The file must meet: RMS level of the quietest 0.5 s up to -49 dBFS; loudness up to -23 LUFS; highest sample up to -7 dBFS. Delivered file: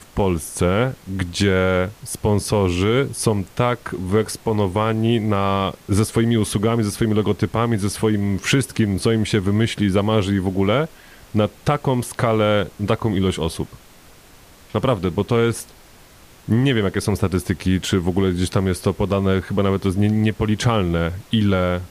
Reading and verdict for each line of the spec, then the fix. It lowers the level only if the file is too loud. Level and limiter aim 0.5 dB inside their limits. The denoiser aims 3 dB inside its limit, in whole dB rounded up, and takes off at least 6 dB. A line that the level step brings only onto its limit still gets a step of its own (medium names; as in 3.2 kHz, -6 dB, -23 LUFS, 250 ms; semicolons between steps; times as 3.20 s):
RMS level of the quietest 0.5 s -46 dBFS: fail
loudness -20.0 LUFS: fail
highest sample -5.5 dBFS: fail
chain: trim -3.5 dB